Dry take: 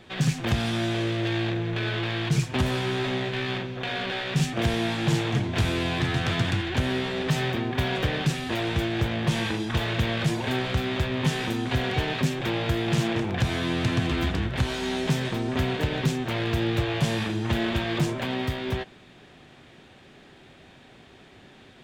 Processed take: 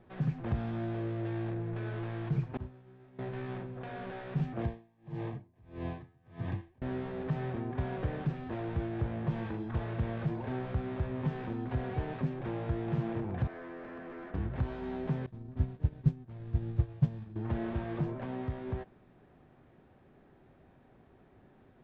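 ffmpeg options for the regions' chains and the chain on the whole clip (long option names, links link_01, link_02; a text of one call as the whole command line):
ffmpeg -i in.wav -filter_complex "[0:a]asettb=1/sr,asplit=3[link_01][link_02][link_03];[link_01]atrim=end=2.574[link_04];[link_02]atrim=start=2.57:end=3.19,asetpts=PTS-STARTPTS,afade=type=in:duration=0.004:curve=qsin,afade=type=out:start_time=0.616:duration=0.004:curve=qsin,agate=range=-33dB:threshold=-14dB:ratio=3:release=100:detection=peak,asplit=2[link_05][link_06];[link_06]adelay=32,volume=-4.5dB[link_07];[link_05][link_07]amix=inputs=2:normalize=0,atrim=end_sample=27342[link_08];[link_03]atrim=start=3.186[link_09];[link_04][link_08]acrossfade=duration=0.004:curve1=hsin:curve2=qsin[link_10];[link_10][link_09]acrossfade=duration=0.004:curve1=qsin:curve2=hsin,asettb=1/sr,asplit=3[link_11][link_12][link_13];[link_11]atrim=end=4.624[link_14];[link_12]atrim=start=4.62:end=6.82,asetpts=PTS-STARTPTS,afade=type=in:duration=0.004:curve=qsin,afade=type=out:start_time=2.196:duration=0.004:curve=qsin,asuperstop=centerf=1400:order=12:qfactor=6.2,aeval=exprs='val(0)*pow(10,-33*(0.5-0.5*cos(2*PI*1.6*n/s))/20)':channel_layout=same[link_15];[link_13]atrim=start=6.816[link_16];[link_14][link_15]acrossfade=duration=0.004:curve1=hsin:curve2=qsin[link_17];[link_17][link_16]acrossfade=duration=0.004:curve1=qsin:curve2=hsin,asettb=1/sr,asplit=3[link_18][link_19][link_20];[link_18]atrim=end=13.474[link_21];[link_19]atrim=start=13.47:end=14.34,asetpts=PTS-STARTPTS,afade=type=in:duration=0.004:curve=qsin,afade=type=out:start_time=0.866:duration=0.004:curve=qsin,highpass=frequency=280:width=0.5412,highpass=frequency=280:width=1.3066,equalizer=frequency=300:width_type=q:width=4:gain=-7,equalizer=frequency=540:width_type=q:width=4:gain=3,equalizer=frequency=860:width_type=q:width=4:gain=-6,equalizer=frequency=1700:width_type=q:width=4:gain=4,equalizer=frequency=2600:width_type=q:width=4:gain=-3,lowpass=frequency=2800:width=0.5412,lowpass=frequency=2800:width=1.3066,asoftclip=type=hard:threshold=-31dB[link_22];[link_20]atrim=start=14.336[link_23];[link_21][link_22]acrossfade=duration=0.004:curve1=hsin:curve2=qsin[link_24];[link_24][link_23]acrossfade=duration=0.004:curve1=qsin:curve2=hsin,asettb=1/sr,asplit=3[link_25][link_26][link_27];[link_25]atrim=end=15.264[link_28];[link_26]atrim=start=15.26:end=17.36,asetpts=PTS-STARTPTS,afade=type=in:duration=0.004:curve=qsin,afade=type=out:start_time=2.096:duration=0.004:curve=qsin,agate=range=-33dB:threshold=-17dB:ratio=3:release=100:detection=peak,bass=frequency=250:gain=12,treble=frequency=4000:gain=12[link_29];[link_27]atrim=start=17.356[link_30];[link_28][link_29]acrossfade=duration=0.004:curve1=hsin:curve2=qsin[link_31];[link_31][link_30]acrossfade=duration=0.004:curve1=qsin:curve2=hsin,lowpass=1200,lowshelf=frequency=84:gain=5.5,volume=-9dB" out.wav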